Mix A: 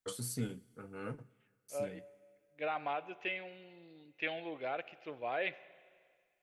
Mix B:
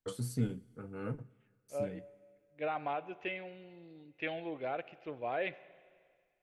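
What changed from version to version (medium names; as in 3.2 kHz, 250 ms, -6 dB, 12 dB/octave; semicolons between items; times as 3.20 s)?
master: add tilt EQ -2 dB/octave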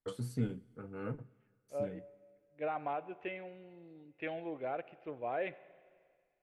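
second voice: add treble shelf 2.4 kHz -8.5 dB; master: add tone controls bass -2 dB, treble -8 dB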